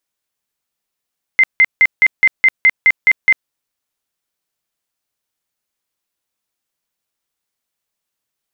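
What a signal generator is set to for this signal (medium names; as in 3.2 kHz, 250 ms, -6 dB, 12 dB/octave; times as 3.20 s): tone bursts 2.08 kHz, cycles 95, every 0.21 s, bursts 10, -5.5 dBFS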